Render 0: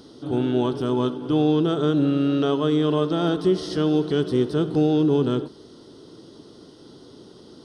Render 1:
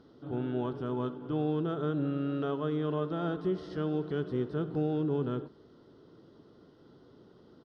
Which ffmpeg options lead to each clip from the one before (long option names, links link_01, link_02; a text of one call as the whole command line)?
ffmpeg -i in.wav -af "firequalizer=gain_entry='entry(160,0);entry(300,-4);entry(530,-1);entry(930,-2);entry(1400,1);entry(3200,-9);entry(8800,-23)':delay=0.05:min_phase=1,volume=-8.5dB" out.wav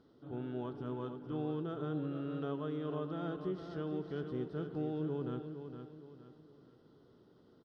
ffmpeg -i in.wav -af "aecho=1:1:463|926|1389|1852:0.376|0.143|0.0543|0.0206,volume=-7.5dB" out.wav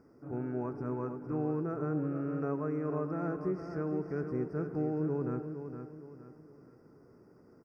ffmpeg -i in.wav -af "asuperstop=centerf=3500:order=12:qfactor=1.5,volume=4.5dB" out.wav